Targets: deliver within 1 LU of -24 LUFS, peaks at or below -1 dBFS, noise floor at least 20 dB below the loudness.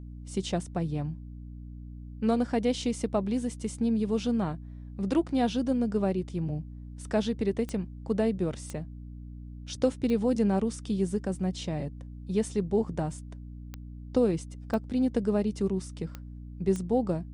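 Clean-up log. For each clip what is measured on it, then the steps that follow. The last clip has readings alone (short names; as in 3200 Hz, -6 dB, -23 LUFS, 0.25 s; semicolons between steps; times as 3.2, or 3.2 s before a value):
clicks 7; hum 60 Hz; harmonics up to 300 Hz; hum level -40 dBFS; loudness -30.0 LUFS; peak -13.0 dBFS; loudness target -24.0 LUFS
-> de-click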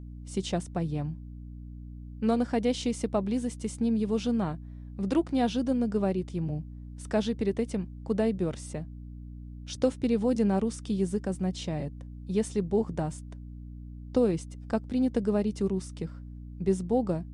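clicks 0; hum 60 Hz; harmonics up to 300 Hz; hum level -40 dBFS
-> de-hum 60 Hz, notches 5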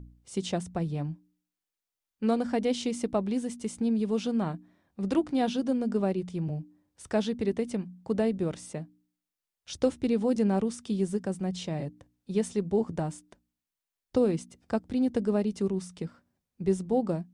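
hum none; loudness -30.0 LUFS; peak -13.0 dBFS; loudness target -24.0 LUFS
-> gain +6 dB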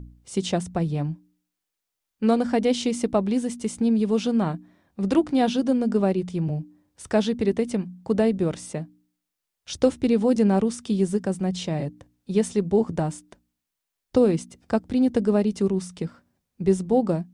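loudness -24.0 LUFS; peak -7.0 dBFS; noise floor -84 dBFS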